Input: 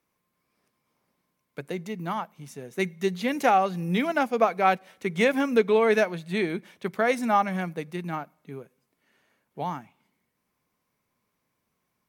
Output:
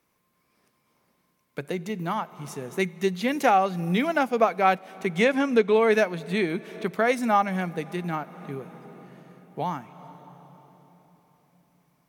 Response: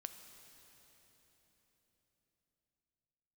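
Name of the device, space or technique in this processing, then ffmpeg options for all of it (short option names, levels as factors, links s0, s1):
ducked reverb: -filter_complex "[0:a]asplit=3[s0][s1][s2];[1:a]atrim=start_sample=2205[s3];[s1][s3]afir=irnorm=-1:irlink=0[s4];[s2]apad=whole_len=533087[s5];[s4][s5]sidechaincompress=threshold=0.0141:ratio=10:attack=25:release=367,volume=1.58[s6];[s0][s6]amix=inputs=2:normalize=0,asettb=1/sr,asplit=3[s7][s8][s9];[s7]atrim=end=5.214[s10];[s8]atrim=start=5.21:end=5.74,asetpts=PTS-STARTPTS,afade=t=in:d=0.004:c=qsin,afade=t=out:st=0.526:d=0.004:c=qsin,lowpass=8700[s11];[s9]atrim=start=5.736[s12];[s10][s11]acrossfade=d=0.004:c1=hsin:c2=qsin[s13];[s13][s12]acrossfade=d=0.004:c1=qsin:c2=hsin"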